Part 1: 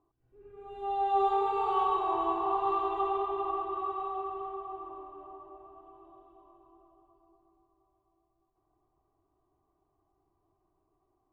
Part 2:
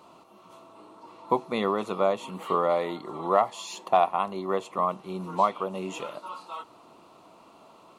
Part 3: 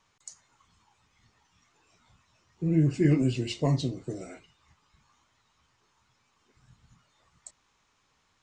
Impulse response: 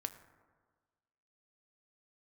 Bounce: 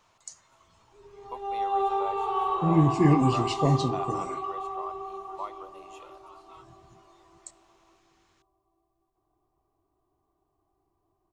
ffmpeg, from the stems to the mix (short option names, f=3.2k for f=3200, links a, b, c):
-filter_complex "[0:a]adelay=600,volume=0.5dB[a];[1:a]highpass=580,volume=-13.5dB[b];[2:a]volume=-1.5dB,asplit=2[c][d];[d]volume=-4dB[e];[3:a]atrim=start_sample=2205[f];[e][f]afir=irnorm=-1:irlink=0[g];[a][b][c][g]amix=inputs=4:normalize=0"